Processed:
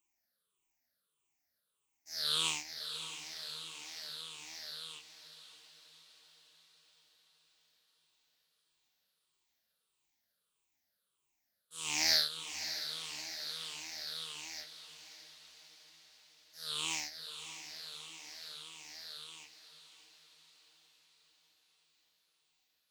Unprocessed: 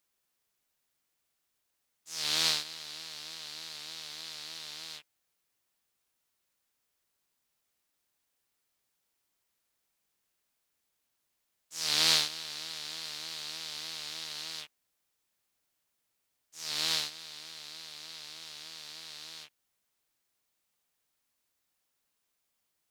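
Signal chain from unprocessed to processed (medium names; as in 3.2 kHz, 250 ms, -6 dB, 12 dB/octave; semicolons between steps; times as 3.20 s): drifting ripple filter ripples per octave 0.68, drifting -1.6 Hz, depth 19 dB; echo that smears into a reverb 600 ms, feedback 58%, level -11 dB; trim -8 dB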